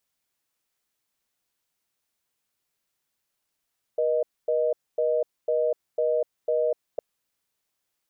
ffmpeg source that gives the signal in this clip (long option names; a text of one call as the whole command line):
ffmpeg -f lavfi -i "aevalsrc='0.0668*(sin(2*PI*480*t)+sin(2*PI*620*t))*clip(min(mod(t,0.5),0.25-mod(t,0.5))/0.005,0,1)':duration=3.01:sample_rate=44100" out.wav